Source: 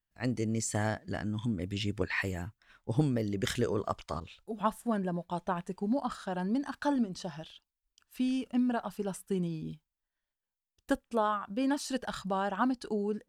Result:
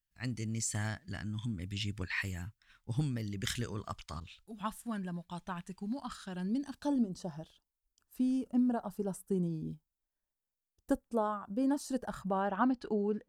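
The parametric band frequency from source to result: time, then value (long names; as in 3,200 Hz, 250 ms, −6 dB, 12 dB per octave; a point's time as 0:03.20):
parametric band −15 dB 2 octaves
0:06.10 510 Hz
0:07.23 2,600 Hz
0:11.96 2,600 Hz
0:12.75 11,000 Hz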